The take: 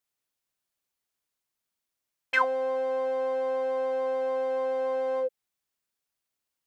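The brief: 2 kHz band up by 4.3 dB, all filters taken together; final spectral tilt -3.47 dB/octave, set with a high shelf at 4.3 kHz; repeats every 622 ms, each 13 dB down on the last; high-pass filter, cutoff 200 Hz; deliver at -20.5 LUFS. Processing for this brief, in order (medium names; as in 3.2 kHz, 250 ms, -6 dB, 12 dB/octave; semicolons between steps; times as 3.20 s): high-pass 200 Hz; peaking EQ 2 kHz +5 dB; treble shelf 4.3 kHz +5 dB; feedback delay 622 ms, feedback 22%, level -13 dB; trim +7.5 dB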